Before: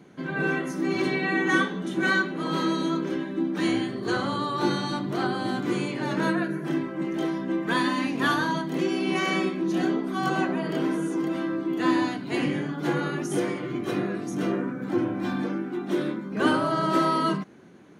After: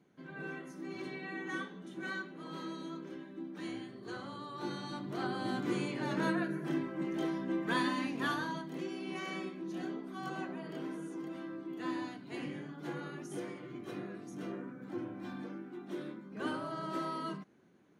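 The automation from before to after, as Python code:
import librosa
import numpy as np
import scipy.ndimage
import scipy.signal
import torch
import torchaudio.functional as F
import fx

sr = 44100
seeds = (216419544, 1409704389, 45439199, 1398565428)

y = fx.gain(x, sr, db=fx.line((4.44, -17.0), (5.53, -7.5), (7.8, -7.5), (8.96, -15.0)))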